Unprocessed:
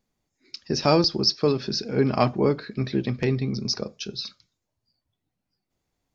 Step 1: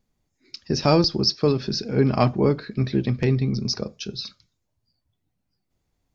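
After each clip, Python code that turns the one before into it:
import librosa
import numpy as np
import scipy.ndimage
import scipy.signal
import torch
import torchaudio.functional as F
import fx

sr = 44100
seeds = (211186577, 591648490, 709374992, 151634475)

y = fx.low_shelf(x, sr, hz=150.0, db=8.5)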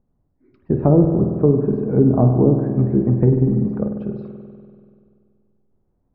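y = fx.env_lowpass_down(x, sr, base_hz=530.0, full_db=-15.5)
y = scipy.signal.sosfilt(scipy.signal.bessel(4, 810.0, 'lowpass', norm='mag', fs=sr, output='sos'), y)
y = fx.rev_spring(y, sr, rt60_s=2.2, pass_ms=(48,), chirp_ms=75, drr_db=4.5)
y = F.gain(torch.from_numpy(y), 5.5).numpy()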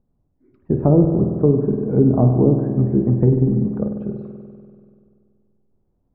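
y = fx.lowpass(x, sr, hz=1200.0, slope=6)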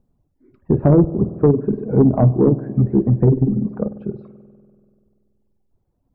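y = fx.dereverb_blind(x, sr, rt60_s=1.5)
y = 10.0 ** (-7.0 / 20.0) * np.tanh(y / 10.0 ** (-7.0 / 20.0))
y = F.gain(torch.from_numpy(y), 4.0).numpy()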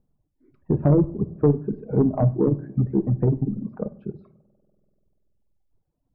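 y = fx.dereverb_blind(x, sr, rt60_s=0.93)
y = fx.room_shoebox(y, sr, seeds[0], volume_m3=640.0, walls='furnished', distance_m=0.49)
y = F.gain(torch.from_numpy(y), -5.5).numpy()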